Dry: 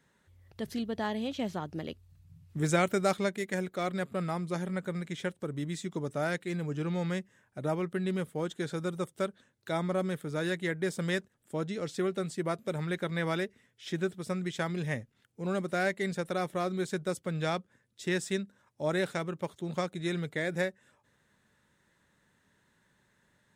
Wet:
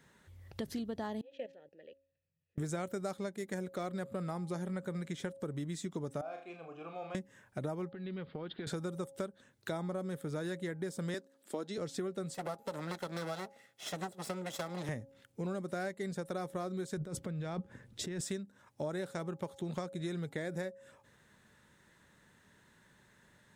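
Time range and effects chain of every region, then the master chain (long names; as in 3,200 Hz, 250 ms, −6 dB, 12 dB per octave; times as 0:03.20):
0:01.21–0:02.58: output level in coarse steps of 16 dB + formant filter e
0:06.21–0:07.15: formant filter a + flutter between parallel walls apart 6.3 metres, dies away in 0.32 s
0:07.89–0:08.67: Butterworth low-pass 4,700 Hz 96 dB per octave + downward compressor 12 to 1, threshold −42 dBFS
0:11.14–0:11.78: high-pass filter 230 Hz 24 dB per octave + parametric band 4,300 Hz +6.5 dB 0.57 octaves
0:12.34–0:14.89: lower of the sound and its delayed copy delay 1.5 ms + Bessel high-pass filter 270 Hz
0:16.97–0:18.21: spectral tilt −2 dB per octave + compressor whose output falls as the input rises −38 dBFS
whole clip: hum removal 273.6 Hz, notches 3; dynamic equaliser 2,500 Hz, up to −8 dB, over −51 dBFS, Q 1.1; downward compressor 6 to 1, threshold −41 dBFS; level +5 dB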